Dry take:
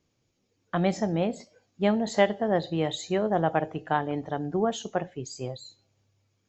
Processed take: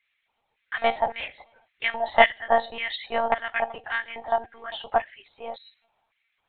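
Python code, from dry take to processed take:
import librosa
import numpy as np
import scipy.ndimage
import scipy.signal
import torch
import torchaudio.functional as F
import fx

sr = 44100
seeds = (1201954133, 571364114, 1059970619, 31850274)

y = fx.filter_lfo_highpass(x, sr, shape='square', hz=1.8, low_hz=830.0, high_hz=2000.0, q=3.9)
y = fx.lpc_monotone(y, sr, seeds[0], pitch_hz=230.0, order=16)
y = F.gain(torch.from_numpy(y), 3.0).numpy()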